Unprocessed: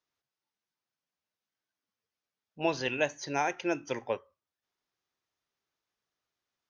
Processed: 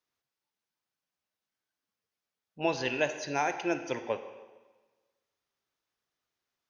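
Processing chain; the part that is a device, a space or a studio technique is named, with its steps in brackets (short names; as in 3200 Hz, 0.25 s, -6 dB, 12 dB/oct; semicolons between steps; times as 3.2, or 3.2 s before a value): filtered reverb send (on a send: HPF 160 Hz + LPF 6100 Hz + reverb RT60 1.3 s, pre-delay 39 ms, DRR 9 dB)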